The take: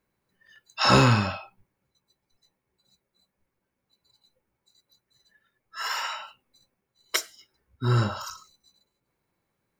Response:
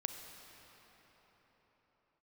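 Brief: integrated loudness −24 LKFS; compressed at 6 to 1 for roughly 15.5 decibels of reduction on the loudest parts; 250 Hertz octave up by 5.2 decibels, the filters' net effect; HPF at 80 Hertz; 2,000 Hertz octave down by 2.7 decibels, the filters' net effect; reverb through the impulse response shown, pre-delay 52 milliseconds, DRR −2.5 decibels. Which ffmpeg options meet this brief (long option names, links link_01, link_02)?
-filter_complex "[0:a]highpass=80,equalizer=frequency=250:width_type=o:gain=6.5,equalizer=frequency=2000:width_type=o:gain=-4,acompressor=threshold=-29dB:ratio=6,asplit=2[link_01][link_02];[1:a]atrim=start_sample=2205,adelay=52[link_03];[link_02][link_03]afir=irnorm=-1:irlink=0,volume=2.5dB[link_04];[link_01][link_04]amix=inputs=2:normalize=0,volume=8.5dB"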